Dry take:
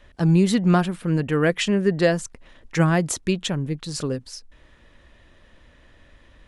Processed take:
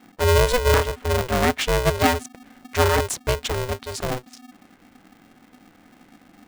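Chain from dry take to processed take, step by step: Wiener smoothing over 9 samples; polarity switched at an audio rate 250 Hz

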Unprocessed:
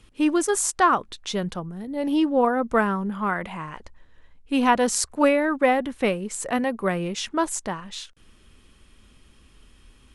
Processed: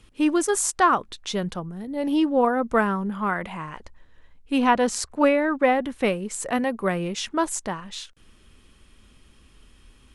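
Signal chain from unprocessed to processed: 4.58–5.84 high shelf 7700 Hz -10.5 dB

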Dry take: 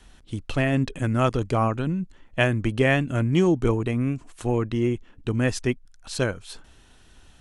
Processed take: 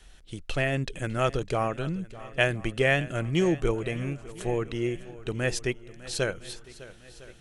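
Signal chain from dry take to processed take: fifteen-band EQ 100 Hz -10 dB, 250 Hz -11 dB, 1000 Hz -7 dB; swung echo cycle 1.006 s, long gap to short 1.5:1, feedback 41%, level -18 dB

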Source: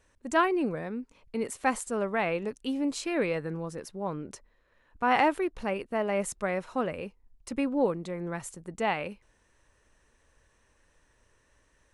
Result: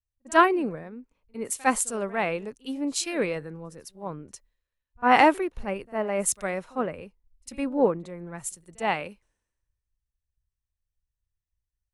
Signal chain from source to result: high shelf 9400 Hz +7.5 dB; reverse echo 52 ms -16.5 dB; three-band expander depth 100%

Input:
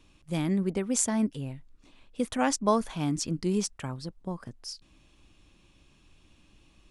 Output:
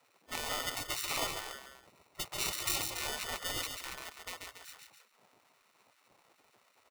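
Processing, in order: loudspeakers at several distances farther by 47 m -5 dB, 96 m -11 dB; sample-and-hold 27×; spectral gate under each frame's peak -20 dB weak; gain +1.5 dB

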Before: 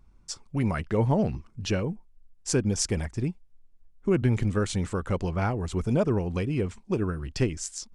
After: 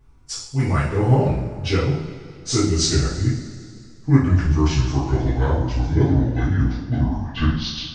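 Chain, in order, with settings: gliding pitch shift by -9.5 st starting unshifted; two-slope reverb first 0.58 s, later 2.5 s, from -15 dB, DRR -10 dB; gain -1.5 dB

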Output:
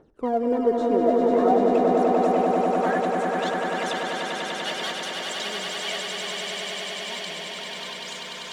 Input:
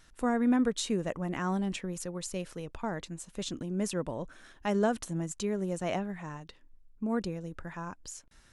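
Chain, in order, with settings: in parallel at -5 dB: sample-and-hold 17×; on the sum: band-pass sweep 430 Hz -> 3400 Hz, 0.85–4.06; phaser 0.54 Hz, delay 3.6 ms, feedback 72%; swelling echo 98 ms, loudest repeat 8, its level -4.5 dB; gain +8.5 dB

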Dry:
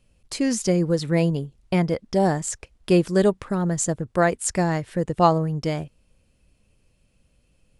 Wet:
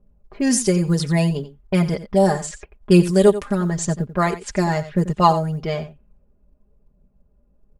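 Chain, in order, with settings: comb 4.9 ms, depth 81%; phaser 1 Hz, delay 3.9 ms, feedback 34%; low-pass opened by the level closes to 1100 Hz, open at -15.5 dBFS; dynamic EQ 9800 Hz, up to +6 dB, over -51 dBFS, Q 4.4; low-pass opened by the level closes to 1100 Hz, open at -15 dBFS; high shelf 6400 Hz +8 dB; on a send: echo 89 ms -14 dB; on the sum: short-mantissa float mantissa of 6-bit

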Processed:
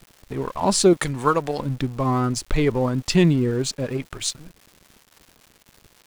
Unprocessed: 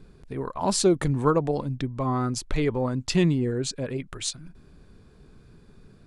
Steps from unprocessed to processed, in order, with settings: 0.93–1.6 tilt shelf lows -7.5 dB, about 940 Hz; crossover distortion -46.5 dBFS; crackle 350/s -43 dBFS; gain +5 dB

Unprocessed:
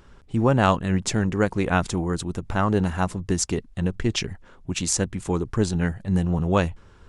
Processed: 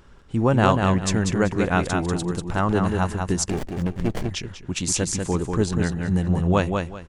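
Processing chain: on a send: feedback echo 0.192 s, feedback 23%, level -4.5 dB; 3.5–4.31 on the sum: running maximum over 33 samples

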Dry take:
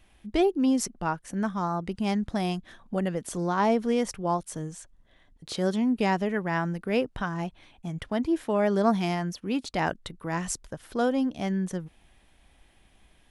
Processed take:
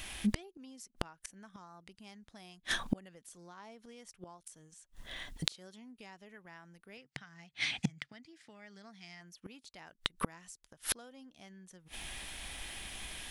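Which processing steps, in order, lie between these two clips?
tilt shelf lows -7 dB, about 1400 Hz; compressor 3:1, threshold -32 dBFS, peak gain reduction 9 dB; flipped gate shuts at -33 dBFS, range -35 dB; 6.97–9.21 speaker cabinet 110–8500 Hz, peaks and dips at 140 Hz +9 dB, 370 Hz -8 dB, 580 Hz -7 dB, 990 Hz -8 dB, 2000 Hz +8 dB, 4800 Hz +6 dB; gain +16.5 dB

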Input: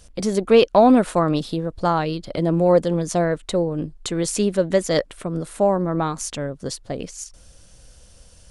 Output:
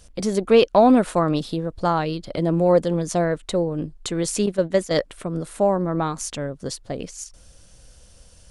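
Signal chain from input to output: 4.46–4.91 gate -21 dBFS, range -8 dB; gain -1 dB

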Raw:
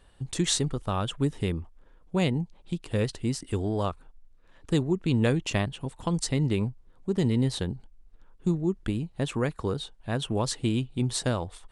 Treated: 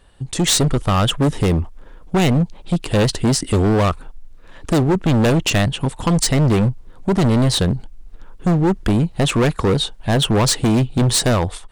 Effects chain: AGC gain up to 11 dB; hard clip -18.5 dBFS, distortion -6 dB; gain +6 dB

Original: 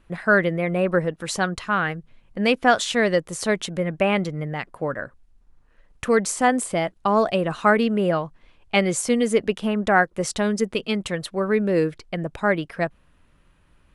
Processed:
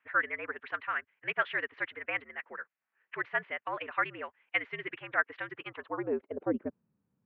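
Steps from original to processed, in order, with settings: band-pass sweep 2000 Hz -> 230 Hz, 10.54–13.21; mistuned SSB -77 Hz 230–3200 Hz; time stretch by phase-locked vocoder 0.52×; gain -1.5 dB

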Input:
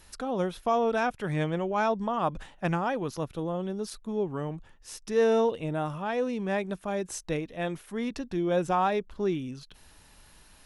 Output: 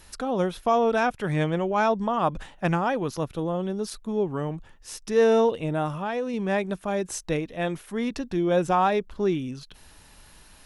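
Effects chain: 5.88–6.34 compressor, threshold -29 dBFS, peak gain reduction 5.5 dB; gain +4 dB

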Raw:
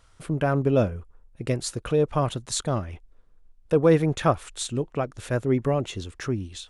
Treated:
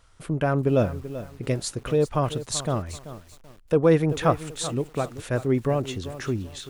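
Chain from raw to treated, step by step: lo-fi delay 0.385 s, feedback 35%, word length 7-bit, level -13 dB

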